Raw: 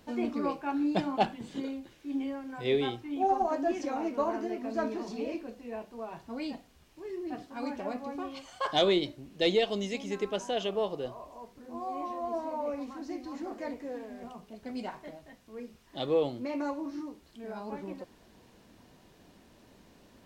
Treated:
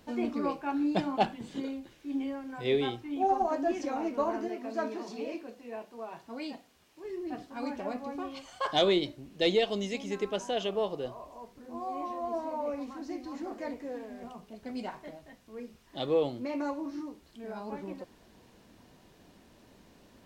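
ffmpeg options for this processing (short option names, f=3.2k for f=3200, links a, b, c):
-filter_complex "[0:a]asettb=1/sr,asplit=3[a][b][c];[a]atrim=end=4.484[d];[b]atrim=start=4.48:end=7.04,asetpts=PTS-STARTPTS,afade=t=in:d=0.004:c=qsin,afade=t=out:st=2.556:d=0.004:c=qsin,highpass=f=290:p=1[e];[c]atrim=start=7.036[f];[d][e]acrossfade=d=0.004:c1=hsin:c2=qsin[g];[g][f]acrossfade=d=0.004:c1=qsin:c2=hsin"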